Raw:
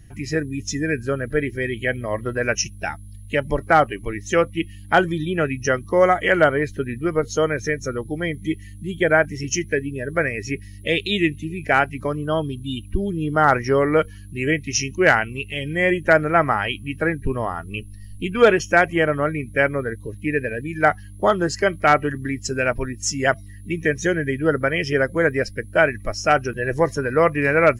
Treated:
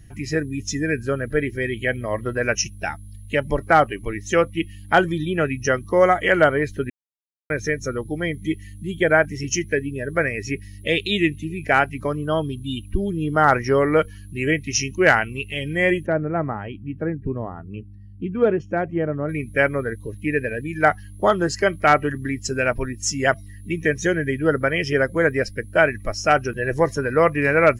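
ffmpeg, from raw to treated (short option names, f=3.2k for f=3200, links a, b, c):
-filter_complex "[0:a]asplit=3[a][b][c];[a]afade=t=out:st=16.05:d=0.02[d];[b]bandpass=f=180:t=q:w=0.55,afade=t=in:st=16.05:d=0.02,afade=t=out:st=19.28:d=0.02[e];[c]afade=t=in:st=19.28:d=0.02[f];[d][e][f]amix=inputs=3:normalize=0,asplit=3[g][h][i];[g]atrim=end=6.9,asetpts=PTS-STARTPTS,afade=t=out:st=6.896:d=0.004:c=hsin[j];[h]atrim=start=6.9:end=7.5,asetpts=PTS-STARTPTS,volume=0[k];[i]atrim=start=7.5,asetpts=PTS-STARTPTS,afade=t=in:d=0.004:c=hsin[l];[j][k][l]concat=n=3:v=0:a=1"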